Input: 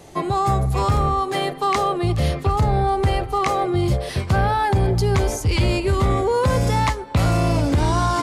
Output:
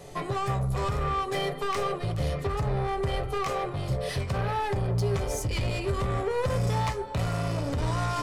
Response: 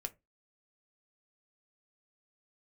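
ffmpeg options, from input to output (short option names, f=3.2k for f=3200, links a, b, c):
-filter_complex "[0:a]acompressor=threshold=-19dB:ratio=6,asoftclip=type=tanh:threshold=-23dB[a];[1:a]atrim=start_sample=2205[b];[a][b]afir=irnorm=-1:irlink=0"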